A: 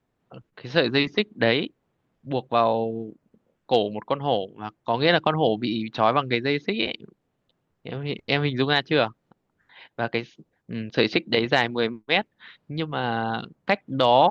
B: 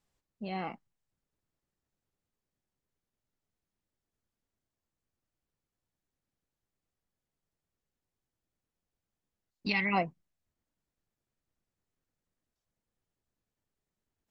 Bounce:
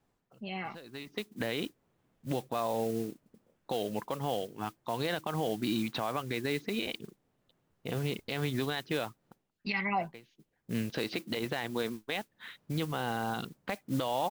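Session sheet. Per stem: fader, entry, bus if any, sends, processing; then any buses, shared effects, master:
−1.0 dB, 0.00 s, no send, downward compressor 5 to 1, threshold −25 dBFS, peak gain reduction 12 dB; noise that follows the level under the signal 18 dB; automatic ducking −21 dB, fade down 0.30 s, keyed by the second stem
−5.5 dB, 0.00 s, no send, comb filter 5 ms, depth 51%; auto-filter bell 1.1 Hz 760–3,000 Hz +11 dB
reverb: not used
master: brickwall limiter −21 dBFS, peak gain reduction 10 dB

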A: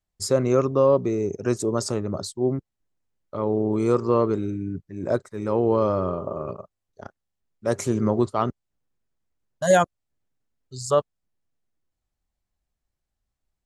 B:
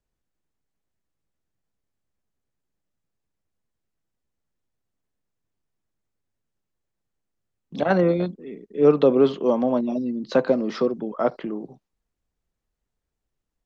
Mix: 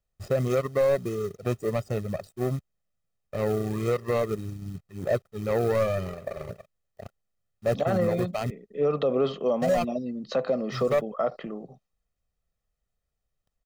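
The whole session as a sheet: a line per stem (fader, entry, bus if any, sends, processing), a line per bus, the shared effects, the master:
0.0 dB, 0.00 s, no send, running median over 41 samples; reverb reduction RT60 1.3 s; log-companded quantiser 6 bits
−3.0 dB, 0.00 s, no send, no processing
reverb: not used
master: comb filter 1.6 ms, depth 59%; brickwall limiter −16 dBFS, peak gain reduction 10.5 dB

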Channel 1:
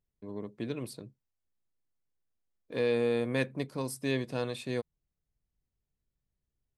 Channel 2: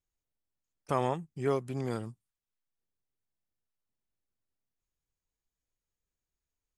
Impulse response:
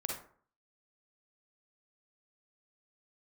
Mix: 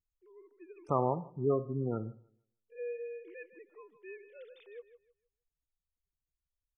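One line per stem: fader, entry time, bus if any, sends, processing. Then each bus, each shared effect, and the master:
−14.0 dB, 0.00 s, no send, echo send −13 dB, three sine waves on the formant tracks
−1.0 dB, 0.00 s, send −14.5 dB, echo send −22.5 dB, gate on every frequency bin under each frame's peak −15 dB strong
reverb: on, RT60 0.50 s, pre-delay 37 ms
echo: repeating echo 156 ms, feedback 24%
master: no processing

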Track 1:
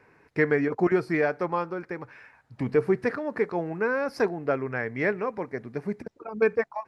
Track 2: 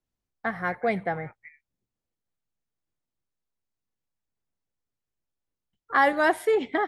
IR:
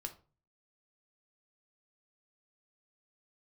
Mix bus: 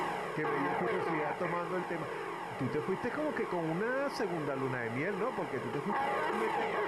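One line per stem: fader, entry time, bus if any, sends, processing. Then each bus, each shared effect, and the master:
0.0 dB, 0.00 s, no send, downward compressor 3 to 1, threshold −28 dBFS, peak gain reduction 9 dB; transient designer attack −5 dB, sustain 0 dB
−3.0 dB, 0.00 s, send −10.5 dB, compressor on every frequency bin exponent 0.2; EQ curve with evenly spaced ripples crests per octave 0.74, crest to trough 9 dB; flanger whose copies keep moving one way falling 1.7 Hz; automatic ducking −8 dB, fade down 0.45 s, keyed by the first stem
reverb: on, RT60 0.35 s, pre-delay 6 ms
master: brickwall limiter −24.5 dBFS, peak gain reduction 10.5 dB

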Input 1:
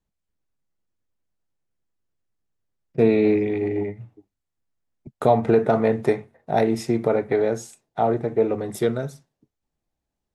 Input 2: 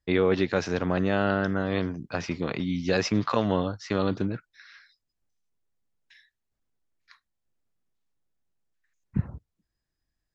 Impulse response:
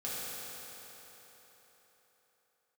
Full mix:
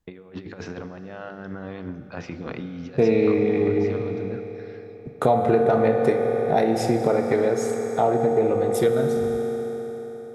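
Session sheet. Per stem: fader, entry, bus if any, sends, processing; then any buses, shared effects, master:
+1.5 dB, 0.00 s, send −6 dB, no processing
−5.5 dB, 0.00 s, send −13 dB, parametric band 5,700 Hz −8.5 dB 2.2 octaves; mains-hum notches 50/100/150/200/250/300/350/400/450 Hz; compressor whose output falls as the input rises −30 dBFS, ratio −0.5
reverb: on, RT60 4.2 s, pre-delay 3 ms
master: downward compressor 2 to 1, threshold −19 dBFS, peak gain reduction 6.5 dB

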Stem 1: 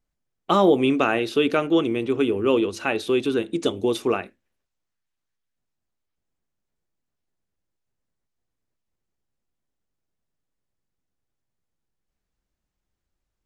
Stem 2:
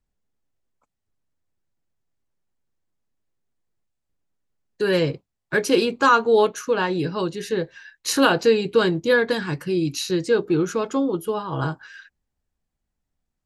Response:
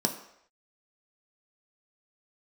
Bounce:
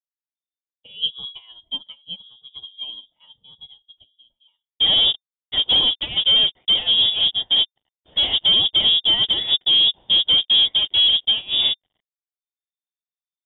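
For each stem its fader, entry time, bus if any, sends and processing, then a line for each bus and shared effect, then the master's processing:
+0.5 dB, 0.35 s, no send, barber-pole flanger 2.7 ms +0.8 Hz; automatic ducking −15 dB, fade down 1.20 s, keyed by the second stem
+0.5 dB, 0.00 s, no send, fuzz pedal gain 31 dB, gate −38 dBFS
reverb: not used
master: flat-topped bell 1,500 Hz −15 dB; voice inversion scrambler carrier 3,600 Hz; expander for the loud parts 2.5 to 1, over −30 dBFS

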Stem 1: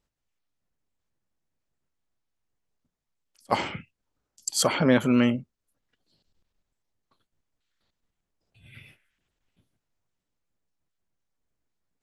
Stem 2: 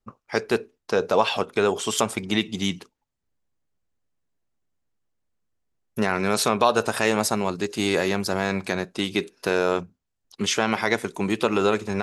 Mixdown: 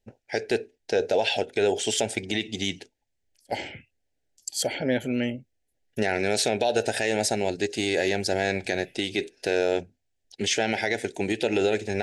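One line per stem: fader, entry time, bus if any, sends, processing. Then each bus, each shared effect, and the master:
−2.5 dB, 0.00 s, no send, no processing
+2.0 dB, 0.00 s, no send, low-pass filter 9,600 Hz 24 dB per octave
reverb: not used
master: Chebyshev band-stop filter 760–1,700 Hz, order 2; parametric band 180 Hz −9 dB 0.65 octaves; brickwall limiter −13 dBFS, peak gain reduction 7 dB

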